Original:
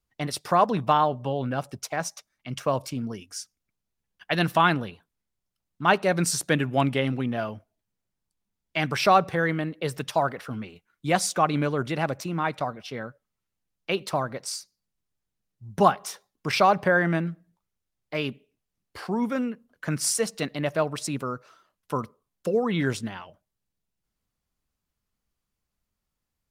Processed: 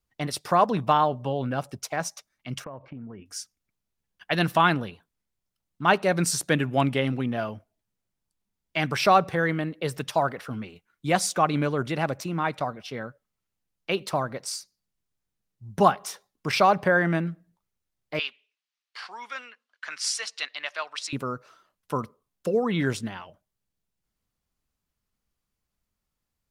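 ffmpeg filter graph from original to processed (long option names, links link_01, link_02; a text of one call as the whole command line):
ffmpeg -i in.wav -filter_complex "[0:a]asettb=1/sr,asplit=3[link_01][link_02][link_03];[link_01]atrim=end=2.644[link_04];[link_02]atrim=start=2.64:end=3.26,asetpts=PTS-STARTPTS,afade=type=in:duration=0.004:curve=qsin,afade=type=out:start_time=0.616:duration=0.004:curve=qsin,lowpass=frequency=2000:width=0.5412,lowpass=frequency=2000:width=1.3066,acompressor=threshold=-36dB:ratio=6:attack=3.2:release=140:knee=1:detection=peak[link_05];[link_03]atrim=start=3.256[link_06];[link_04][link_05]acrossfade=duration=0.004:curve1=hsin:curve2=qsin[link_07];[link_07][link_06]acrossfade=duration=0.004:curve1=qsin:curve2=hsin,asettb=1/sr,asplit=3[link_08][link_09][link_10];[link_08]atrim=end=18.194[link_11];[link_09]atrim=start=18.19:end=21.13,asetpts=PTS-STARTPTS,afade=type=in:duration=0.004:curve=qsin,afade=type=out:start_time=2.936:duration=0.004:curve=qsin,asuperpass=centerf=2100:order=4:qfactor=0.53,tiltshelf=frequency=1400:gain=-7[link_12];[link_10]atrim=start=21.126[link_13];[link_11][link_12]acrossfade=duration=0.004:curve1=hsin:curve2=qsin[link_14];[link_14][link_13]acrossfade=duration=0.004:curve1=qsin:curve2=hsin" out.wav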